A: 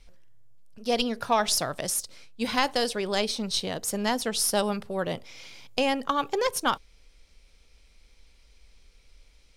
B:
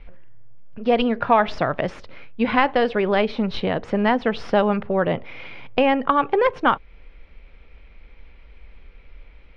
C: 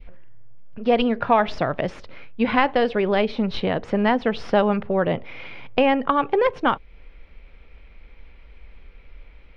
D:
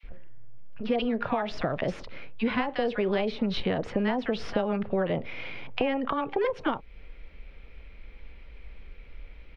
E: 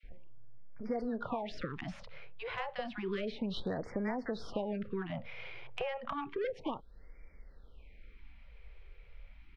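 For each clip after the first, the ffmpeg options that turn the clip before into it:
-filter_complex "[0:a]lowpass=f=2.5k:w=0.5412,lowpass=f=2.5k:w=1.3066,asplit=2[a][b];[b]acompressor=threshold=-33dB:ratio=6,volume=2dB[c];[a][c]amix=inputs=2:normalize=0,volume=5dB"
-af "adynamicequalizer=threshold=0.0224:dfrequency=1300:dqfactor=0.98:tfrequency=1300:tqfactor=0.98:attack=5:release=100:ratio=0.375:range=2:mode=cutabove:tftype=bell"
-filter_complex "[0:a]acompressor=threshold=-23dB:ratio=6,acrossover=split=1000[a][b];[a]adelay=30[c];[c][b]amix=inputs=2:normalize=0"
-af "asoftclip=type=tanh:threshold=-15dB,afftfilt=real='re*(1-between(b*sr/1024,230*pow(3400/230,0.5+0.5*sin(2*PI*0.31*pts/sr))/1.41,230*pow(3400/230,0.5+0.5*sin(2*PI*0.31*pts/sr))*1.41))':imag='im*(1-between(b*sr/1024,230*pow(3400/230,0.5+0.5*sin(2*PI*0.31*pts/sr))/1.41,230*pow(3400/230,0.5+0.5*sin(2*PI*0.31*pts/sr))*1.41))':win_size=1024:overlap=0.75,volume=-8dB"

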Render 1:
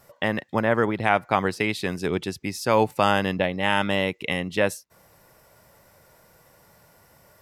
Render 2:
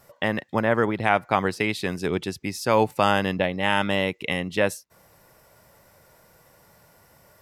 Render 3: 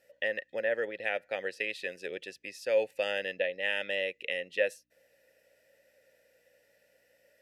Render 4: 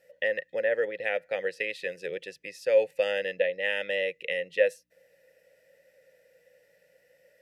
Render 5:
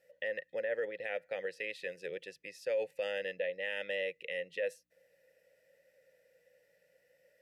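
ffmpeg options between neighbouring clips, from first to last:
-af anull
-filter_complex "[0:a]aeval=exprs='val(0)+0.00224*(sin(2*PI*60*n/s)+sin(2*PI*2*60*n/s)/2+sin(2*PI*3*60*n/s)/3+sin(2*PI*4*60*n/s)/4+sin(2*PI*5*60*n/s)/5)':c=same,asplit=3[a][b][c];[a]bandpass=f=530:t=q:w=8,volume=0dB[d];[b]bandpass=f=1.84k:t=q:w=8,volume=-6dB[e];[c]bandpass=f=2.48k:t=q:w=8,volume=-9dB[f];[d][e][f]amix=inputs=3:normalize=0,crystalizer=i=6.5:c=0,volume=-3dB"
-af "equalizer=f=160:t=o:w=0.33:g=11,equalizer=f=250:t=o:w=0.33:g=-5,equalizer=f=500:t=o:w=0.33:g=8,equalizer=f=2k:t=o:w=0.33:g=4"
-af "alimiter=limit=-20dB:level=0:latency=1:release=36,volume=-6.5dB"

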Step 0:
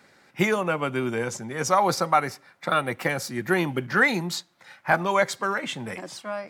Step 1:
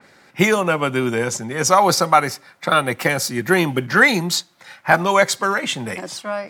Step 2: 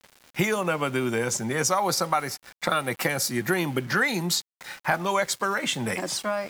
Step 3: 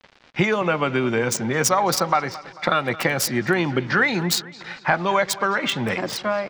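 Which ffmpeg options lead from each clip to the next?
-af "adynamicequalizer=threshold=0.0158:dfrequency=3200:dqfactor=0.7:tfrequency=3200:tqfactor=0.7:attack=5:release=100:ratio=0.375:range=2.5:mode=boostabove:tftype=highshelf,volume=6.5dB"
-af "crystalizer=i=0.5:c=0,acompressor=threshold=-26dB:ratio=3,aeval=exprs='val(0)*gte(abs(val(0)),0.00668)':c=same,volume=1.5dB"
-filter_complex "[0:a]aecho=1:1:221|442|663|884:0.126|0.0629|0.0315|0.0157,acrossover=split=5000[a][b];[b]acrusher=bits=3:mix=0:aa=0.5[c];[a][c]amix=inputs=2:normalize=0,volume=4.5dB"

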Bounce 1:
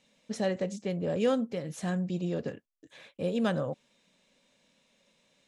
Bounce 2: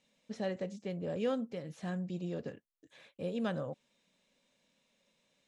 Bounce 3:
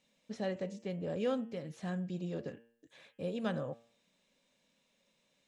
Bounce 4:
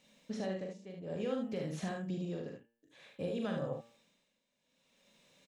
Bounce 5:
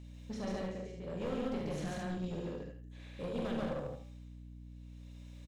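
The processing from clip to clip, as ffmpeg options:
-filter_complex "[0:a]acrossover=split=5200[a][b];[b]acompressor=threshold=-59dB:ratio=4:attack=1:release=60[c];[a][c]amix=inputs=2:normalize=0,volume=-6.5dB"
-af "bandreject=f=116.3:t=h:w=4,bandreject=f=232.6:t=h:w=4,bandreject=f=348.9:t=h:w=4,bandreject=f=465.2:t=h:w=4,bandreject=f=581.5:t=h:w=4,bandreject=f=697.8:t=h:w=4,bandreject=f=814.1:t=h:w=4,bandreject=f=930.4:t=h:w=4,bandreject=f=1.0467k:t=h:w=4,bandreject=f=1.163k:t=h:w=4,bandreject=f=1.2793k:t=h:w=4,bandreject=f=1.3956k:t=h:w=4,bandreject=f=1.5119k:t=h:w=4,bandreject=f=1.6282k:t=h:w=4,bandreject=f=1.7445k:t=h:w=4,bandreject=f=1.8608k:t=h:w=4,bandreject=f=1.9771k:t=h:w=4,bandreject=f=2.0934k:t=h:w=4,bandreject=f=2.2097k:t=h:w=4,bandreject=f=2.326k:t=h:w=4,bandreject=f=2.4423k:t=h:w=4,bandreject=f=2.5586k:t=h:w=4,bandreject=f=2.6749k:t=h:w=4,bandreject=f=2.7912k:t=h:w=4,bandreject=f=2.9075k:t=h:w=4,bandreject=f=3.0238k:t=h:w=4,bandreject=f=3.1401k:t=h:w=4,bandreject=f=3.2564k:t=h:w=4,bandreject=f=3.3727k:t=h:w=4"
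-af "tremolo=f=0.56:d=0.86,acompressor=threshold=-42dB:ratio=6,aecho=1:1:42|74:0.562|0.562,volume=6.5dB"
-af "aecho=1:1:139.9|227.4:1|0.282,aeval=exprs='val(0)+0.00447*(sin(2*PI*60*n/s)+sin(2*PI*2*60*n/s)/2+sin(2*PI*3*60*n/s)/3+sin(2*PI*4*60*n/s)/4+sin(2*PI*5*60*n/s)/5)':c=same,aeval=exprs='clip(val(0),-1,0.015)':c=same,volume=-1.5dB"

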